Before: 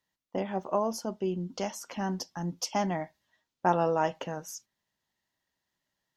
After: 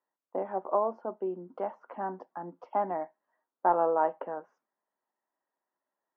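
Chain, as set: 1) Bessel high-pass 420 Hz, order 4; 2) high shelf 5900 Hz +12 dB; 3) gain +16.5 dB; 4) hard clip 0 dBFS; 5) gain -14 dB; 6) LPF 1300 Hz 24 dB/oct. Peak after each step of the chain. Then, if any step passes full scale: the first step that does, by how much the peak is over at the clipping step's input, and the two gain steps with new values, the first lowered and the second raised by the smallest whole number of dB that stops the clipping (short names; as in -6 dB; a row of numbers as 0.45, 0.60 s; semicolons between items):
-13.5, -13.5, +3.0, 0.0, -14.0, -13.0 dBFS; step 3, 3.0 dB; step 3 +13.5 dB, step 5 -11 dB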